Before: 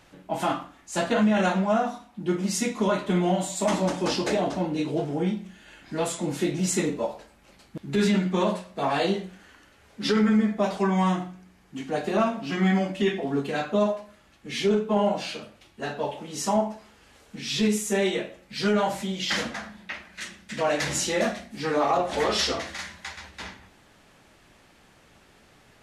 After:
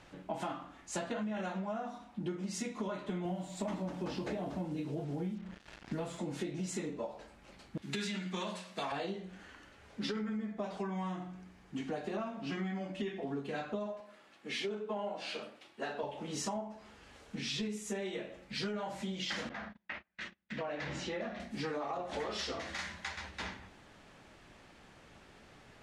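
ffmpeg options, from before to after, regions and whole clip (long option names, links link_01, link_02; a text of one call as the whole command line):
ffmpeg -i in.wav -filter_complex "[0:a]asettb=1/sr,asplit=3[link_01][link_02][link_03];[link_01]atrim=end=3.254[link_04];[link_02]atrim=start=3.25:end=6.18,asetpts=PTS-STARTPTS,afade=type=in:duration=0.004:curve=qsin,afade=type=out:start_time=2.926:duration=0.004:curve=qsin,bass=frequency=250:gain=7,treble=frequency=4000:gain=-6,acrusher=bits=6:mix=0:aa=0.5[link_05];[link_03]atrim=start=6.176[link_06];[link_04][link_05]acrossfade=duration=0.004:curve1=hsin:curve2=qsin[link_07];[link_07][link_06]acrossfade=duration=0.004:curve1=qsin:curve2=hsin,asettb=1/sr,asplit=3[link_08][link_09][link_10];[link_08]atrim=end=7.824[link_11];[link_09]atrim=start=7.82:end=8.92,asetpts=PTS-STARTPTS,afade=type=in:duration=0.004:curve=qsin,afade=type=out:start_time=1.096:duration=0.004:curve=qsin,highpass=frequency=170:width_type=q:width=1.7,tiltshelf=frequency=1200:gain=-9.5[link_12];[link_10]atrim=start=8.916[link_13];[link_11][link_12]acrossfade=duration=0.004:curve1=hsin:curve2=qsin[link_14];[link_14][link_13]acrossfade=duration=0.004:curve1=qsin:curve2=hsin,asettb=1/sr,asplit=3[link_15][link_16][link_17];[link_15]atrim=end=14.004[link_18];[link_16]atrim=start=14:end=16.03,asetpts=PTS-STARTPTS,afade=type=in:duration=0.004:curve=qsin,afade=type=out:start_time=2.026:duration=0.004:curve=qsin,highpass=270,equalizer=frequency=6400:width=3.5:gain=-3,bandreject=frequency=60:width_type=h:width=6,bandreject=frequency=120:width_type=h:width=6,bandreject=frequency=180:width_type=h:width=6,bandreject=frequency=240:width_type=h:width=6,bandreject=frequency=300:width_type=h:width=6,bandreject=frequency=360:width_type=h:width=6,bandreject=frequency=420:width_type=h:width=6[link_19];[link_17]atrim=start=16.026[link_20];[link_18][link_19]acrossfade=duration=0.004:curve1=hsin:curve2=qsin[link_21];[link_21][link_20]acrossfade=duration=0.004:curve1=qsin:curve2=hsin,asettb=1/sr,asplit=3[link_22][link_23][link_24];[link_22]atrim=end=19.494[link_25];[link_23]atrim=start=19.49:end=21.4,asetpts=PTS-STARTPTS,afade=type=in:duration=0.004:curve=qsin,afade=type=out:start_time=1.906:duration=0.004:curve=qsin,lowpass=3400,acompressor=threshold=-41dB:ratio=1.5:attack=3.2:release=140:knee=1:detection=peak,agate=range=-33dB:threshold=-44dB:ratio=16:release=100:detection=peak[link_26];[link_24]atrim=start=21.396[link_27];[link_25][link_26]acrossfade=duration=0.004:curve1=hsin:curve2=qsin[link_28];[link_28][link_27]acrossfade=duration=0.004:curve1=qsin:curve2=hsin,lowpass=9900,highshelf=frequency=4600:gain=-5,acompressor=threshold=-34dB:ratio=10,volume=-1dB" out.wav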